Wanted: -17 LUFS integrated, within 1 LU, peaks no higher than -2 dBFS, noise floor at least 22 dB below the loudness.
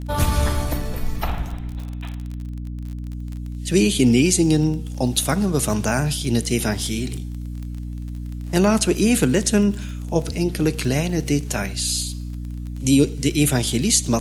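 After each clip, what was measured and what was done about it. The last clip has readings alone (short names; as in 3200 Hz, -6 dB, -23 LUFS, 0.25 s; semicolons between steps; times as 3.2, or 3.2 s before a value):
ticks 28/s; hum 60 Hz; harmonics up to 300 Hz; hum level -27 dBFS; loudness -20.5 LUFS; peak -4.0 dBFS; loudness target -17.0 LUFS
-> de-click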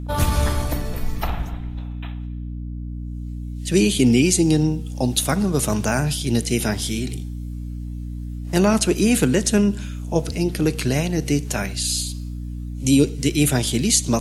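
ticks 0/s; hum 60 Hz; harmonics up to 300 Hz; hum level -27 dBFS
-> de-hum 60 Hz, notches 5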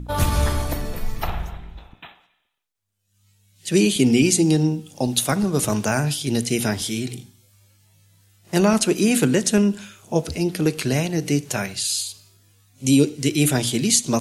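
hum none; loudness -21.0 LUFS; peak -4.5 dBFS; loudness target -17.0 LUFS
-> gain +4 dB; limiter -2 dBFS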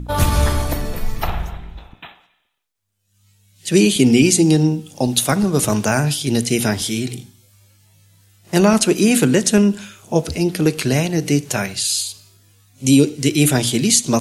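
loudness -17.0 LUFS; peak -2.0 dBFS; noise floor -65 dBFS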